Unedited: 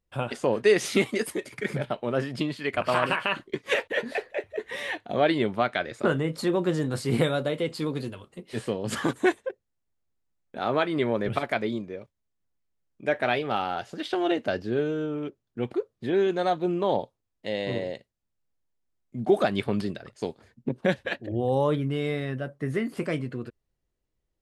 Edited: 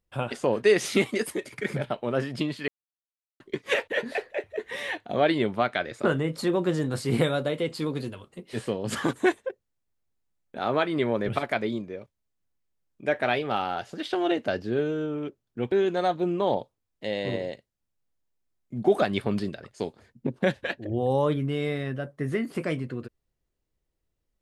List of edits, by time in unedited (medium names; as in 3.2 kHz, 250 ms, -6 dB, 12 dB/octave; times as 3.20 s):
2.68–3.40 s: mute
15.72–16.14 s: delete